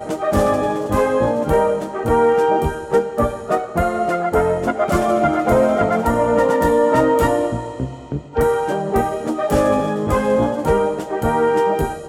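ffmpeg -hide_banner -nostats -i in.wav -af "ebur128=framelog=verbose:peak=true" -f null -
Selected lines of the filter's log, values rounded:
Integrated loudness:
  I:         -17.9 LUFS
  Threshold: -28.0 LUFS
Loudness range:
  LRA:         2.5 LU
  Threshold: -37.9 LUFS
  LRA low:   -19.0 LUFS
  LRA high:  -16.5 LUFS
True peak:
  Peak:       -5.9 dBFS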